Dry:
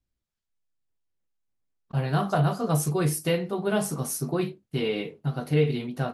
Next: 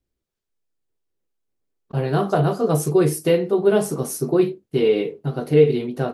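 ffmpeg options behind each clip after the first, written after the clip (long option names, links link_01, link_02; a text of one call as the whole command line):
ffmpeg -i in.wav -af "equalizer=frequency=400:width_type=o:width=0.97:gain=11,volume=1.5dB" out.wav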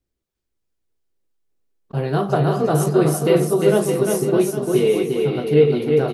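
ffmpeg -i in.wav -af "aecho=1:1:350|612.5|809.4|957|1068:0.631|0.398|0.251|0.158|0.1" out.wav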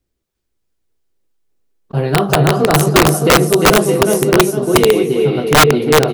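ffmpeg -i in.wav -af "aeval=exprs='(mod(2.66*val(0)+1,2)-1)/2.66':channel_layout=same,volume=6dB" out.wav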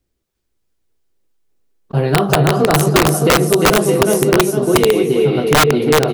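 ffmpeg -i in.wav -af "acompressor=threshold=-10dB:ratio=6,volume=1.5dB" out.wav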